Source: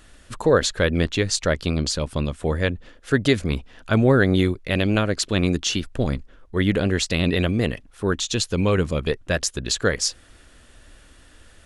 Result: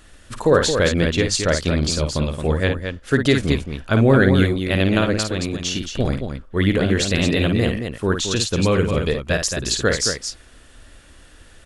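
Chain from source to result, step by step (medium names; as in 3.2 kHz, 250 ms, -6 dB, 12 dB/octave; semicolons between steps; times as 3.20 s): 5.14–5.89 s: compression 4:1, threshold -23 dBFS, peak gain reduction 7.5 dB; loudspeakers at several distances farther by 18 m -7 dB, 76 m -7 dB; trim +1.5 dB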